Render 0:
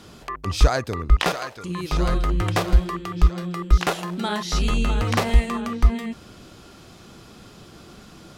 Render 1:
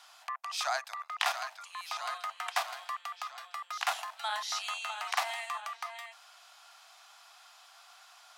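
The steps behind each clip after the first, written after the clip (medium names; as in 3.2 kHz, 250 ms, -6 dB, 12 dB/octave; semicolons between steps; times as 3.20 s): steep high-pass 680 Hz 72 dB/octave; trim -6 dB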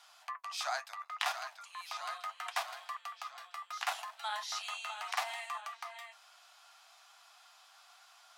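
flange 0.72 Hz, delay 5.7 ms, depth 6.6 ms, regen -48%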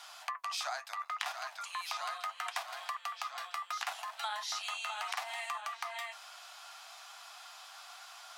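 compression 6:1, threshold -45 dBFS, peak gain reduction 15 dB; trim +9.5 dB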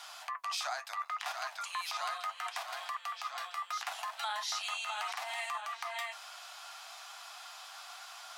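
peak limiter -28.5 dBFS, peak gain reduction 10 dB; trim +2.5 dB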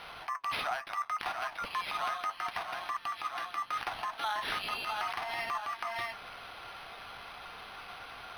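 decimation joined by straight lines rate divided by 6×; trim +4 dB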